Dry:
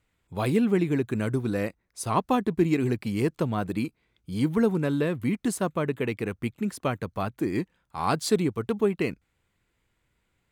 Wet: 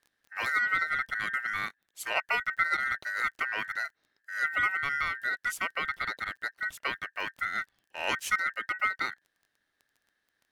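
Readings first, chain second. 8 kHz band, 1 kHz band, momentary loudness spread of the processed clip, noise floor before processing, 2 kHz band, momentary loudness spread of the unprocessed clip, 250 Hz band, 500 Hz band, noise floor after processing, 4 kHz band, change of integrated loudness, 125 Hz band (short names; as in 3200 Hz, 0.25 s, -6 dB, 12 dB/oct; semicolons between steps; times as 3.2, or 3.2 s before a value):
-5.0 dB, -0.5 dB, 8 LU, -75 dBFS, +11.0 dB, 8 LU, -27.0 dB, -18.0 dB, -80 dBFS, +1.5 dB, -3.0 dB, -26.0 dB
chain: crackle 19/s -42 dBFS; ring modulator 1700 Hz; gain -2.5 dB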